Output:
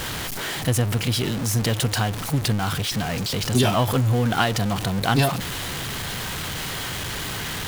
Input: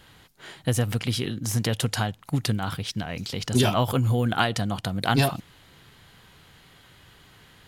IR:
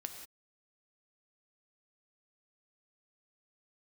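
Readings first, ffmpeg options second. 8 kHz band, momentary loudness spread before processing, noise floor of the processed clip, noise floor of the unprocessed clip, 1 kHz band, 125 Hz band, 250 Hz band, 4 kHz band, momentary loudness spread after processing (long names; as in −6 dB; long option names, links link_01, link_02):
+6.5 dB, 9 LU, −30 dBFS, −54 dBFS, +3.5 dB, +3.5 dB, +3.0 dB, +5.0 dB, 8 LU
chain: -af "aeval=exprs='val(0)+0.5*0.0631*sgn(val(0))':channel_layout=same"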